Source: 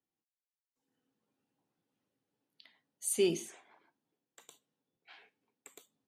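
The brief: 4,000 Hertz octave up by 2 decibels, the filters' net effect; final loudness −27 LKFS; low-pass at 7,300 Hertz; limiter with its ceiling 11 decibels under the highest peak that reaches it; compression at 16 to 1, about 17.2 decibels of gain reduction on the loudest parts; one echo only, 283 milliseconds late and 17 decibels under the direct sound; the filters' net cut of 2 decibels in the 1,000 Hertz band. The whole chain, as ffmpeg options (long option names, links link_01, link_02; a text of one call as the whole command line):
ffmpeg -i in.wav -af "lowpass=7300,equalizer=frequency=1000:width_type=o:gain=-3,equalizer=frequency=4000:width_type=o:gain=3.5,acompressor=threshold=-41dB:ratio=16,alimiter=level_in=19dB:limit=-24dB:level=0:latency=1,volume=-19dB,aecho=1:1:283:0.141,volume=30dB" out.wav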